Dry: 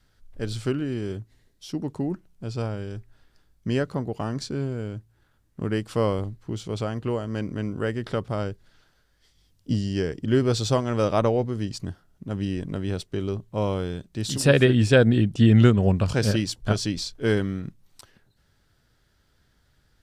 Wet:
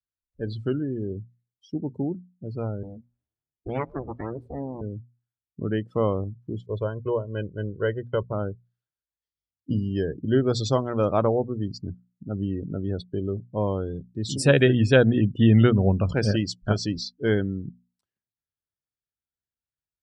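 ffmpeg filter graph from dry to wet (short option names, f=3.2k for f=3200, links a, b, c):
-filter_complex "[0:a]asettb=1/sr,asplit=3[a][b][c];[a]atrim=end=2.834[d];[b]atrim=start=2.83:end=4.81,asetpts=PTS-STARTPTS,afade=t=in:d=0.004:c=qsin,afade=t=out:st=1.976:d=0.004:c=qsin,lowpass=3.3k,aeval=exprs='abs(val(0))':c=same,asplit=7[e][f][g][h][i][j][k];[f]adelay=118,afreqshift=36,volume=-20.5dB[l];[g]adelay=236,afreqshift=72,volume=-24.4dB[m];[h]adelay=354,afreqshift=108,volume=-28.3dB[n];[i]adelay=472,afreqshift=144,volume=-32.1dB[o];[j]adelay=590,afreqshift=180,volume=-36dB[p];[k]adelay=708,afreqshift=216,volume=-39.9dB[q];[e][l][m][n][o][p][q]amix=inputs=7:normalize=0,atrim=end_sample=87318[r];[c]atrim=start=4.806[s];[d][r]acrossfade=d=0.004:c1=hsin:c2=qsin[t];[t][s]acrossfade=d=0.004:c1=qsin:c2=hsin,asettb=1/sr,asplit=3[u][v][w];[u]atrim=end=6.664[x];[v]atrim=start=6.66:end=8.33,asetpts=PTS-STARTPTS,afade=t=in:d=0.004:c=qsin,afade=t=out:st=1.666:d=0.004:c=qsin,agate=range=-33dB:threshold=-28dB:ratio=3:release=100:detection=peak,aecho=1:1:2:0.59,atrim=end_sample=73647[y];[w]atrim=start=8.326[z];[x][y]acrossfade=d=0.004:c1=hsin:c2=qsin[aa];[aa][z]acrossfade=d=0.004:c1=qsin:c2=hsin,highpass=43,afftdn=nr=35:nf=-33,bandreject=f=60:t=h:w=6,bandreject=f=120:t=h:w=6,bandreject=f=180:t=h:w=6,bandreject=f=240:t=h:w=6"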